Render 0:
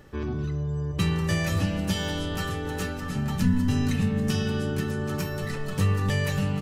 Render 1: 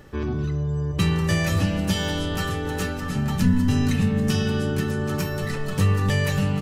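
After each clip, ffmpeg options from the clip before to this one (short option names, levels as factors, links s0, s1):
-af "acontrast=58,volume=0.75"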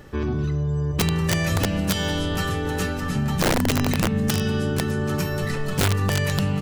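-af "aeval=exprs='(mod(4.47*val(0)+1,2)-1)/4.47':c=same,acompressor=threshold=0.0708:ratio=2,volume=1.33"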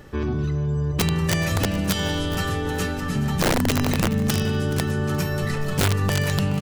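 -af "aecho=1:1:424|848|1272:0.158|0.0539|0.0183"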